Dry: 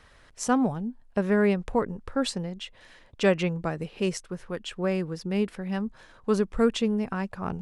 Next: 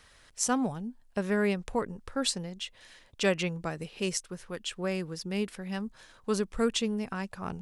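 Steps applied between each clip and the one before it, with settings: treble shelf 2.9 kHz +12 dB; trim -5.5 dB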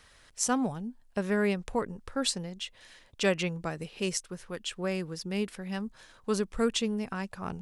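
no audible change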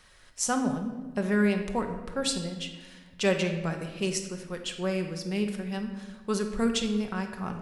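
simulated room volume 1000 m³, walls mixed, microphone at 1 m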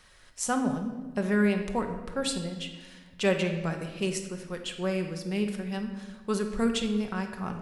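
dynamic bell 5.6 kHz, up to -6 dB, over -47 dBFS, Q 1.7

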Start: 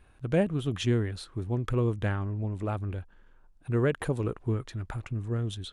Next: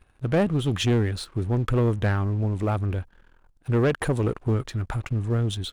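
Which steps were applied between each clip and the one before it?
waveshaping leveller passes 2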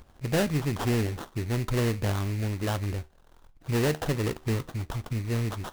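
feedback comb 76 Hz, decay 0.3 s, harmonics all, mix 50%; sample-rate reducer 2.3 kHz, jitter 20%; upward compressor, threshold -42 dBFS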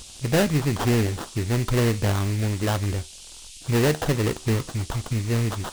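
band noise 2.7–9.7 kHz -49 dBFS; trim +5 dB

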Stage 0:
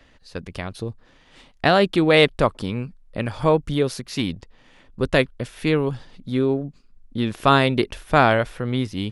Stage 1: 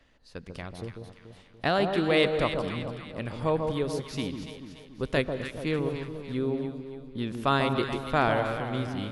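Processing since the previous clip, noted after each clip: echo whose repeats swap between lows and highs 144 ms, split 1.1 kHz, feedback 69%, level -5 dB; on a send at -15 dB: reverberation, pre-delay 3 ms; on the sum: trim -9 dB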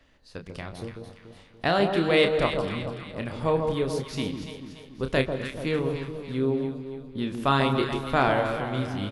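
doubling 30 ms -7.5 dB; trim +1.5 dB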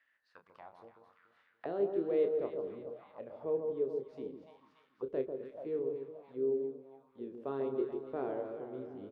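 auto-wah 410–1800 Hz, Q 4.2, down, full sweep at -27 dBFS; trim -4 dB

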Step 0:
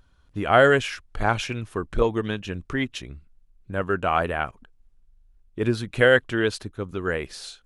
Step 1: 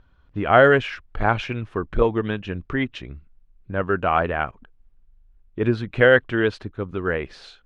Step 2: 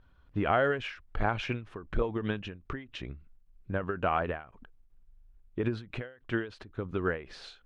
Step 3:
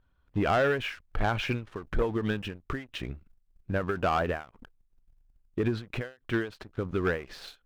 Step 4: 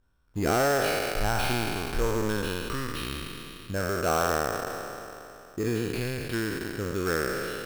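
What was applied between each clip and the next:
low-pass 2.8 kHz 12 dB/octave; trim +2.5 dB
compression 4:1, threshold -21 dBFS, peak gain reduction 10.5 dB; endings held to a fixed fall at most 140 dB/s; trim -3 dB
waveshaping leveller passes 2; trim -3.5 dB
spectral sustain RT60 2.95 s; sample-rate reducer 6.9 kHz, jitter 0%; trim -3.5 dB

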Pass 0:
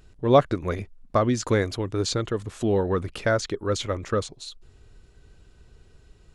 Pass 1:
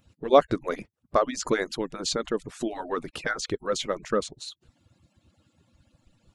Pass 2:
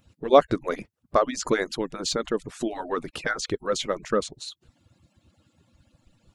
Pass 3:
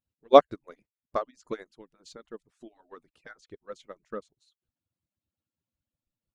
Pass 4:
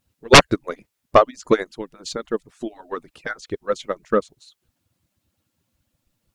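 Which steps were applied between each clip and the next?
harmonic-percussive separation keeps percussive
de-esser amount 50%; trim +1.5 dB
upward expansion 2.5:1, over -32 dBFS; trim +2 dB
sine folder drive 16 dB, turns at -1 dBFS; trim -1.5 dB

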